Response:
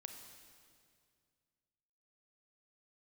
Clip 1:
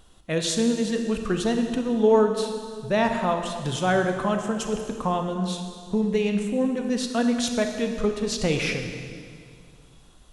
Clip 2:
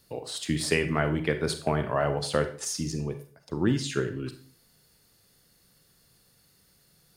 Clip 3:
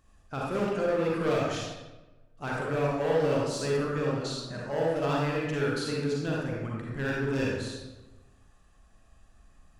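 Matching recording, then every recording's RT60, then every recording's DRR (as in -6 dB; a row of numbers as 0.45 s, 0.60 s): 1; 2.2 s, 0.45 s, 1.1 s; 4.5 dB, 8.5 dB, -4.5 dB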